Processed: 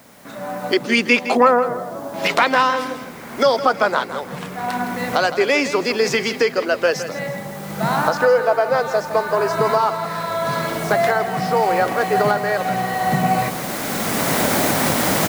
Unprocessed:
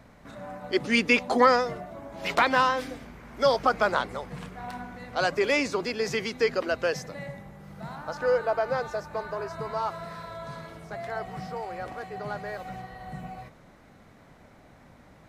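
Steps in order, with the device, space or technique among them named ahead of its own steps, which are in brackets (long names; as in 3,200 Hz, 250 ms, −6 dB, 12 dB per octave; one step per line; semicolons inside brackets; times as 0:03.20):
high-pass filter 180 Hz 12 dB per octave
0:01.37–0:02.14: low-pass filter 1,600 Hz 24 dB per octave
cheap recorder with automatic gain (white noise bed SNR 30 dB; camcorder AGC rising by 12 dB per second)
repeating echo 163 ms, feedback 33%, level −12 dB
level +6 dB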